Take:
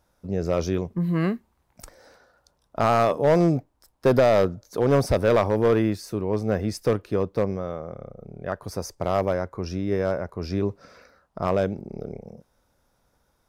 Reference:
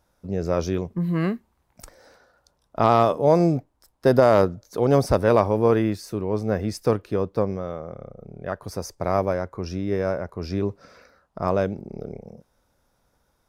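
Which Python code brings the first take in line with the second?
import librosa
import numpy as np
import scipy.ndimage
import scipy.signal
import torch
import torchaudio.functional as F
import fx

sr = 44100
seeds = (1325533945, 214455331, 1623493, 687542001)

y = fx.fix_declip(x, sr, threshold_db=-12.5)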